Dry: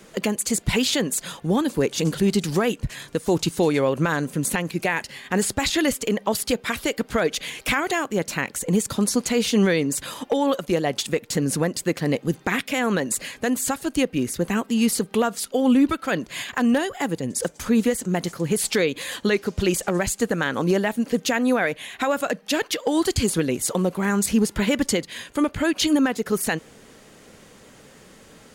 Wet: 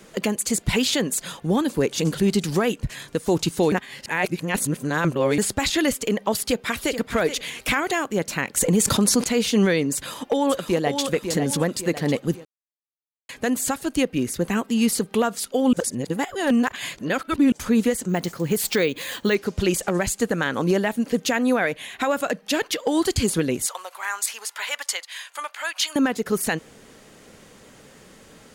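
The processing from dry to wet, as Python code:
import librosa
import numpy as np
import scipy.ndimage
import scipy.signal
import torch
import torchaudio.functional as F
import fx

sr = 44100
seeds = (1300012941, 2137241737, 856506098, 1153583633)

y = fx.echo_throw(x, sr, start_s=6.38, length_s=0.58, ms=430, feedback_pct=20, wet_db=-10.5)
y = fx.env_flatten(y, sr, amount_pct=70, at=(8.57, 9.24))
y = fx.echo_throw(y, sr, start_s=9.94, length_s=1.07, ms=550, feedback_pct=45, wet_db=-7.0)
y = fx.resample_bad(y, sr, factor=2, down='filtered', up='hold', at=(18.09, 19.35))
y = fx.highpass(y, sr, hz=820.0, slope=24, at=(23.66, 25.96))
y = fx.edit(y, sr, fx.reverse_span(start_s=3.72, length_s=1.66),
    fx.silence(start_s=12.45, length_s=0.84),
    fx.reverse_span(start_s=15.73, length_s=1.79), tone=tone)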